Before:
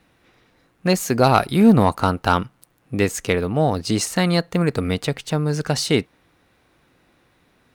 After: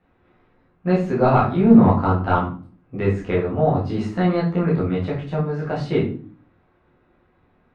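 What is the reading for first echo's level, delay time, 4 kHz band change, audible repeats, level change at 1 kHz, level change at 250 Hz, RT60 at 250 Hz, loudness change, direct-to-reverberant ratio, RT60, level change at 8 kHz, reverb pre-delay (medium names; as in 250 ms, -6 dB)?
no echo, no echo, -14.5 dB, no echo, -1.0 dB, +1.0 dB, 0.65 s, 0.0 dB, -7.0 dB, 0.45 s, under -25 dB, 12 ms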